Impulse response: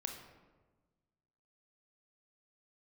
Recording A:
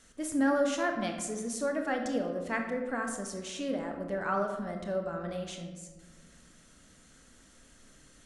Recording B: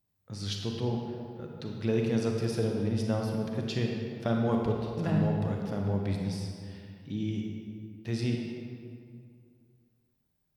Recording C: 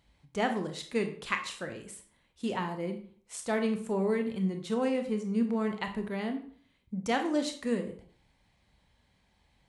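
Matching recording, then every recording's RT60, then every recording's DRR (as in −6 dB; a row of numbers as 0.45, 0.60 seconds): A; 1.3, 2.3, 0.50 seconds; 3.5, 0.5, 5.5 decibels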